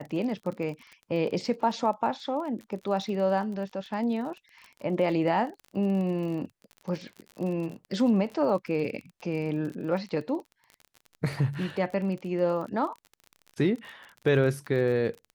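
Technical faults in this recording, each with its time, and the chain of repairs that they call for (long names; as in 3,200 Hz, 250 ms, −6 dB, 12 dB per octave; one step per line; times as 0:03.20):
surface crackle 34 per second −36 dBFS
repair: click removal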